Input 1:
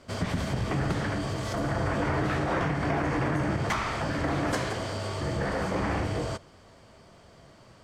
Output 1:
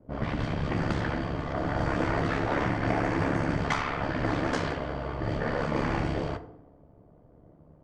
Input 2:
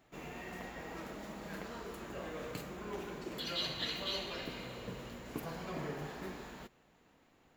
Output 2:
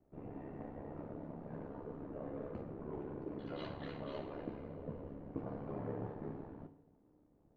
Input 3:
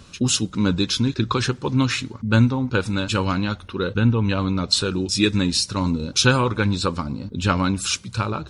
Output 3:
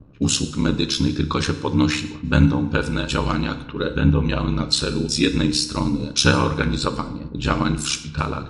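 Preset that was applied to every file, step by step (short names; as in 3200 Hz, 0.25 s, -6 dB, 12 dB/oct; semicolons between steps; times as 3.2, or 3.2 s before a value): ring modulator 35 Hz; FDN reverb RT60 0.88 s, low-frequency decay 1.05×, high-frequency decay 0.95×, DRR 8.5 dB; low-pass opened by the level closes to 470 Hz, open at -23 dBFS; gain +2.5 dB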